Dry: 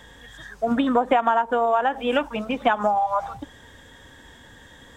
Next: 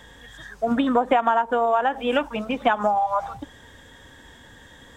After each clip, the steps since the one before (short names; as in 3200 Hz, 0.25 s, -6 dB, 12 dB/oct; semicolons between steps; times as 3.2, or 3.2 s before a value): nothing audible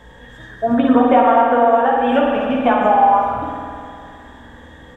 high shelf 2100 Hz -11.5 dB; early reflections 16 ms -4.5 dB, 54 ms -8 dB; spring tank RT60 2.5 s, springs 50 ms, chirp 20 ms, DRR -0.5 dB; gain +4 dB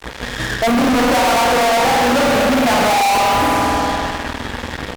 fuzz box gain 37 dB, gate -39 dBFS